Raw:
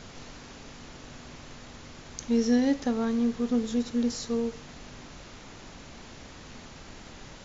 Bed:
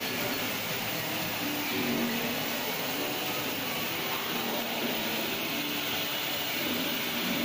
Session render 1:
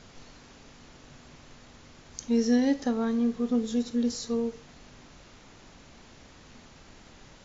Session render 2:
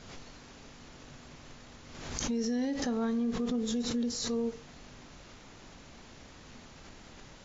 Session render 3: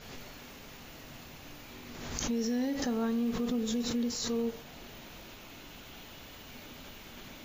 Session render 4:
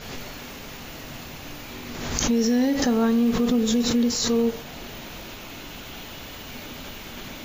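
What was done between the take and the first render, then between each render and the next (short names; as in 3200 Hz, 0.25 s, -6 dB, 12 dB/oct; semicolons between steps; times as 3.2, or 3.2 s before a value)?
noise print and reduce 6 dB
limiter -25 dBFS, peak gain reduction 10.5 dB; backwards sustainer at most 46 dB/s
add bed -20.5 dB
gain +10.5 dB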